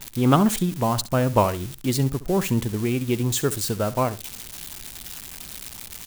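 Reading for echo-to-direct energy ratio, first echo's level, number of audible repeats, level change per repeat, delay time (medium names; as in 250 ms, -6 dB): -16.5 dB, -16.5 dB, 2, -14.5 dB, 67 ms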